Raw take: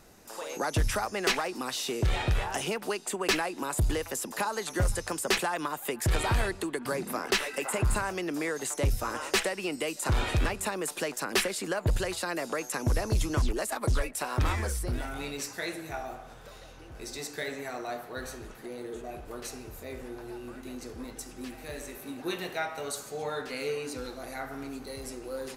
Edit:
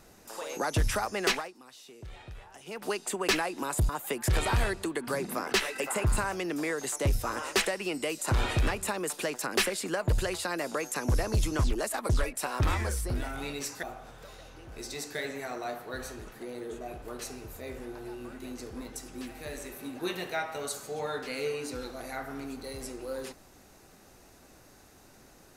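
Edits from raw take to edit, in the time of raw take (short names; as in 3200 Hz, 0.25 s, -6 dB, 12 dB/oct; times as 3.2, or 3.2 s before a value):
1.29–2.89 dip -18.5 dB, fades 0.24 s
3.89–5.67 cut
15.61–16.06 cut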